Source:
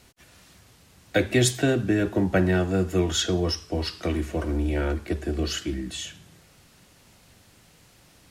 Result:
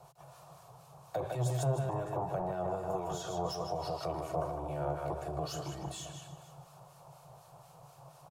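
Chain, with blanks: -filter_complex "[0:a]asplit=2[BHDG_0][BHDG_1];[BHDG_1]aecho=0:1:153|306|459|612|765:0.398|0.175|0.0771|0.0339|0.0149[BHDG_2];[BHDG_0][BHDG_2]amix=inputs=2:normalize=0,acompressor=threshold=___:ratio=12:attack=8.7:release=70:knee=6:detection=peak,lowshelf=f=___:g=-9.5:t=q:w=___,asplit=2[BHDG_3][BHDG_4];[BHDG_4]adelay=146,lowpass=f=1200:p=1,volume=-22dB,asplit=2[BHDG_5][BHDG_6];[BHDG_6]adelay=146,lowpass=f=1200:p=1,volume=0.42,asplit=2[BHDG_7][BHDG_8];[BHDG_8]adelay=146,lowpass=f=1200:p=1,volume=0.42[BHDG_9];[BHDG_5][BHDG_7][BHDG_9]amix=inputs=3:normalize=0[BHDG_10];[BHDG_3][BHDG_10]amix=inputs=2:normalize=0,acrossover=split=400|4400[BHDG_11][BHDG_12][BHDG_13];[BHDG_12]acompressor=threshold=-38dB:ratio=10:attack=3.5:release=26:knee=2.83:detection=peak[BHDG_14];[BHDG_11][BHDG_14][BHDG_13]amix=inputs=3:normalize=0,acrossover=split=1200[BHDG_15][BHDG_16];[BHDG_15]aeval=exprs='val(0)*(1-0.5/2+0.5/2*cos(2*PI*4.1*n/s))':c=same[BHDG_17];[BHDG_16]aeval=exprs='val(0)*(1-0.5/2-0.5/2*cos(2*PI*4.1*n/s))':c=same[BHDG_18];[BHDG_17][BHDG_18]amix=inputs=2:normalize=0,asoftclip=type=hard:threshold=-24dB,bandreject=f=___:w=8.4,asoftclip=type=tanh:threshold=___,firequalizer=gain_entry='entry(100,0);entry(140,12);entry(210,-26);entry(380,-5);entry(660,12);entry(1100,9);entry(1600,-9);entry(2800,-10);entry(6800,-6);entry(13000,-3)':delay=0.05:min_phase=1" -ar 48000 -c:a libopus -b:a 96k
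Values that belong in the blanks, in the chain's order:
-26dB, 120, 1.5, 2000, -25.5dB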